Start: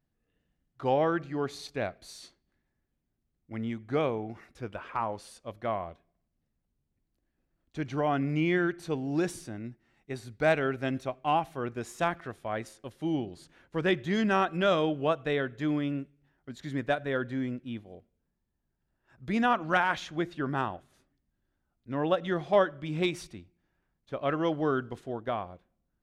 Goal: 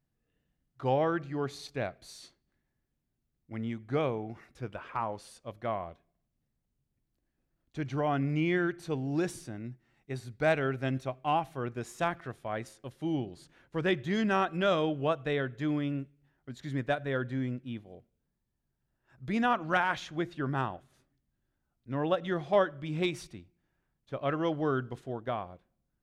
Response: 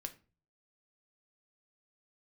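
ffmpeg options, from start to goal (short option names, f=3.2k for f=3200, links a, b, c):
-af "equalizer=f=130:t=o:w=0.25:g=6.5,volume=-2dB"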